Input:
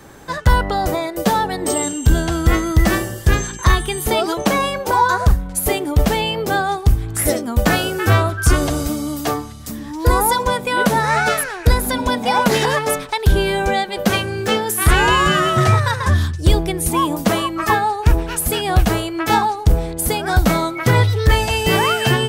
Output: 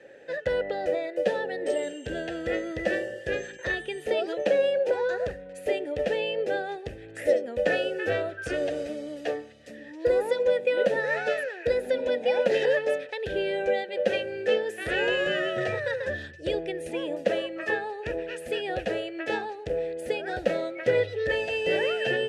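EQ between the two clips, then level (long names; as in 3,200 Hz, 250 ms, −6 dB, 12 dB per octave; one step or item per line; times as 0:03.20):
formant filter e
low-pass filter 11,000 Hz 24 dB per octave
dynamic equaliser 2,100 Hz, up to −4 dB, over −42 dBFS, Q 1.7
+4.0 dB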